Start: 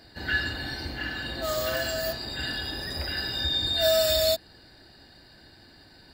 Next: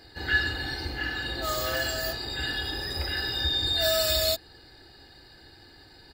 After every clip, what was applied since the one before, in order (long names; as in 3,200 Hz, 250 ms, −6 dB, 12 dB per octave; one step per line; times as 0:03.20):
comb filter 2.4 ms, depth 45%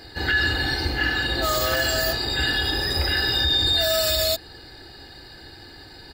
brickwall limiter −21 dBFS, peak gain reduction 8 dB
level +8.5 dB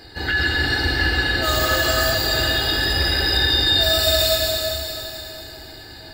convolution reverb RT60 3.4 s, pre-delay 107 ms, DRR −1 dB